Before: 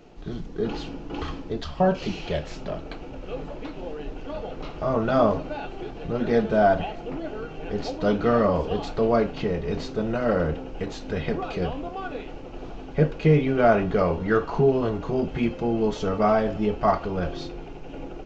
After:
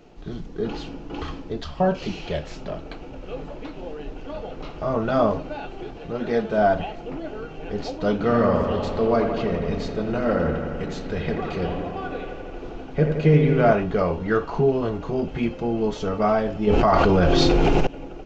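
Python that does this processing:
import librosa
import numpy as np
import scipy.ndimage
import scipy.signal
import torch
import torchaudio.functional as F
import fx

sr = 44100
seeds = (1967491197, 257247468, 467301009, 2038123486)

y = fx.low_shelf(x, sr, hz=200.0, db=-6.5, at=(5.97, 6.58))
y = fx.echo_wet_lowpass(y, sr, ms=85, feedback_pct=76, hz=2700.0, wet_db=-6, at=(8.12, 13.73))
y = fx.env_flatten(y, sr, amount_pct=100, at=(16.67, 17.87))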